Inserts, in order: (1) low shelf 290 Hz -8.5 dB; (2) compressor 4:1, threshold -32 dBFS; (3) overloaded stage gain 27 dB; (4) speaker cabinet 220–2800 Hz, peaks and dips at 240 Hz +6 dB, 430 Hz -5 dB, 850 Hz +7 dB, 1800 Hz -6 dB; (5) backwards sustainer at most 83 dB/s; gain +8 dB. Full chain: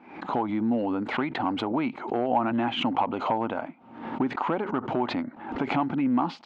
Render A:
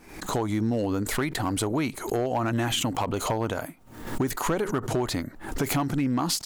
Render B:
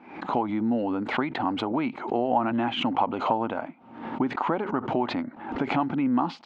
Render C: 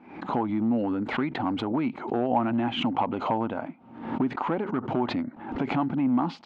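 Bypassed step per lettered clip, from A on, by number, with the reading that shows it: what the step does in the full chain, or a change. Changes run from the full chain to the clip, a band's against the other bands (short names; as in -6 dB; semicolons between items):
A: 4, crest factor change -2.0 dB; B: 3, distortion -19 dB; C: 1, 125 Hz band +4.5 dB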